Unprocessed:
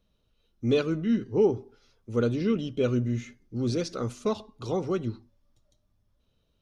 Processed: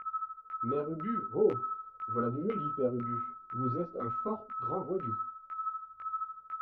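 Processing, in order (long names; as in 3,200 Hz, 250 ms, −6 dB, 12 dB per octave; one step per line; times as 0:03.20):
steady tone 1,300 Hz −31 dBFS
auto-filter low-pass saw down 2 Hz 510–2,200 Hz
micro pitch shift up and down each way 17 cents
level −5.5 dB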